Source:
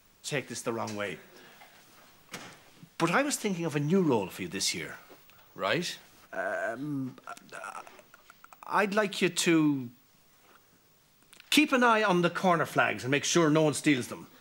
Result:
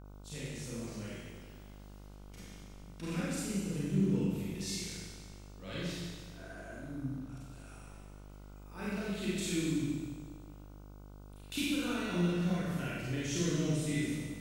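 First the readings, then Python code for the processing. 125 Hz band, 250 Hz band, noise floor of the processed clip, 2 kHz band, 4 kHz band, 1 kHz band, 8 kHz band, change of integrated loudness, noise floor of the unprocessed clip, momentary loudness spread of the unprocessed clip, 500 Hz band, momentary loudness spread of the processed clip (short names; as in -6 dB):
-0.5 dB, -5.0 dB, -51 dBFS, -13.0 dB, -8.5 dB, -18.0 dB, -7.0 dB, -8.0 dB, -63 dBFS, 20 LU, -11.5 dB, 21 LU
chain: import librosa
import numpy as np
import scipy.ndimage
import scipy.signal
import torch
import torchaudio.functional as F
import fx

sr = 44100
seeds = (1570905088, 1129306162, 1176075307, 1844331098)

y = fx.tone_stack(x, sr, knobs='10-0-1')
y = fx.rev_schroeder(y, sr, rt60_s=1.6, comb_ms=31, drr_db=-9.0)
y = fx.dmg_buzz(y, sr, base_hz=50.0, harmonics=30, level_db=-55.0, tilt_db=-6, odd_only=False)
y = y * 10.0 ** (4.0 / 20.0)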